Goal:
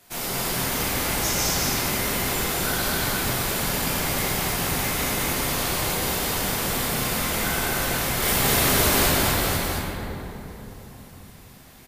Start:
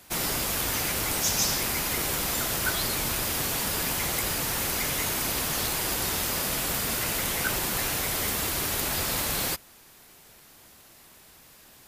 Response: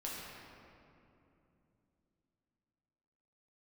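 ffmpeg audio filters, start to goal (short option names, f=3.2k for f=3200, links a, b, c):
-filter_complex "[0:a]asettb=1/sr,asplit=3[a][b][c];[a]atrim=end=8.224[d];[b]atrim=start=8.22:end=9.07,asetpts=PTS-STARTPTS,afade=t=in:d=0.004:c=qsin,afade=t=out:st=0.846:d=0.004:c=qsin,acontrast=54[e];[c]atrim=start=9.066[f];[d][e]acrossfade=d=0.004:c1=hsin:c2=qsin[g];[g][f]acrossfade=d=0.004:c1=qsin:c2=hsin,aecho=1:1:221:0.708[h];[1:a]atrim=start_sample=2205,asetrate=34398,aresample=44100[i];[h][i]afir=irnorm=-1:irlink=0"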